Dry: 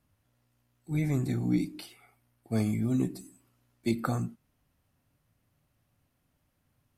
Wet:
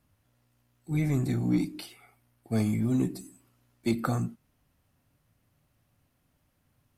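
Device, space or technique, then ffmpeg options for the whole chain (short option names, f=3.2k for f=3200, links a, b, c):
parallel distortion: -filter_complex "[0:a]asplit=2[a][b];[b]asoftclip=type=hard:threshold=-30dB,volume=-9dB[c];[a][c]amix=inputs=2:normalize=0"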